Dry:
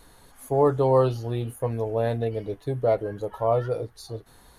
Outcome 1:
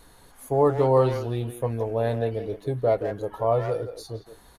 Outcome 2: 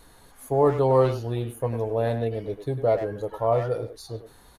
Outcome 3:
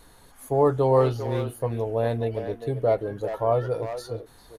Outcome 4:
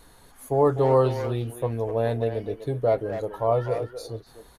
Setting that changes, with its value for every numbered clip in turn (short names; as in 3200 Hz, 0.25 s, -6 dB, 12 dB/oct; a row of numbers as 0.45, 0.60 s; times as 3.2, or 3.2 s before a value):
speakerphone echo, time: 0.17, 0.1, 0.4, 0.25 s